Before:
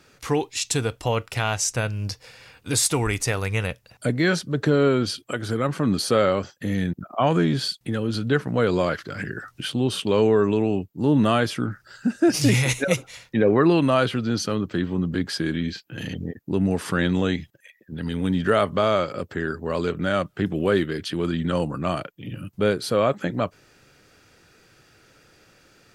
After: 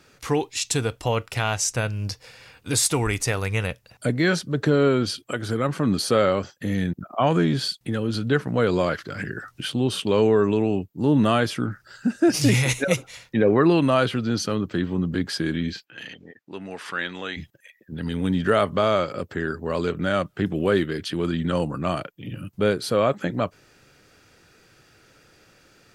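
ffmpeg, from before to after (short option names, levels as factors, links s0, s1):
-filter_complex "[0:a]asplit=3[s0][s1][s2];[s0]afade=t=out:st=15.84:d=0.02[s3];[s1]bandpass=f=2100:t=q:w=0.67,afade=t=in:st=15.84:d=0.02,afade=t=out:st=17.36:d=0.02[s4];[s2]afade=t=in:st=17.36:d=0.02[s5];[s3][s4][s5]amix=inputs=3:normalize=0"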